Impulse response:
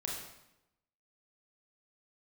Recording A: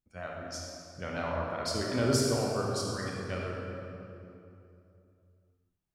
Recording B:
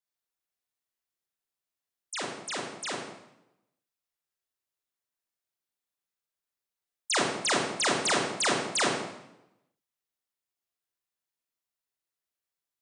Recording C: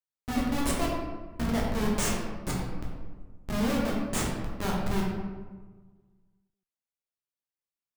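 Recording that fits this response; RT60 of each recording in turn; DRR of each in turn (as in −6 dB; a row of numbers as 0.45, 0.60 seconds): B; 2.8, 0.90, 1.4 seconds; −2.5, −2.5, −4.0 decibels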